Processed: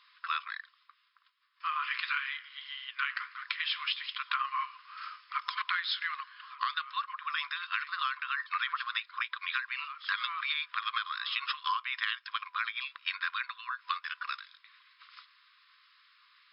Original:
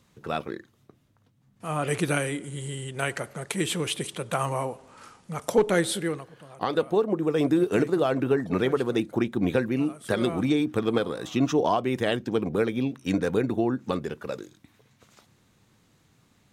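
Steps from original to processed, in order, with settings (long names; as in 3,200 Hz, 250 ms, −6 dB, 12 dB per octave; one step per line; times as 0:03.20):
0:01.70–0:04.20: flanger 1.7 Hz, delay 7.7 ms, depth 9.8 ms, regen −68%
brick-wall band-pass 1,000–5,300 Hz
downward compressor 10 to 1, threshold −35 dBFS, peak gain reduction 10.5 dB
level +7 dB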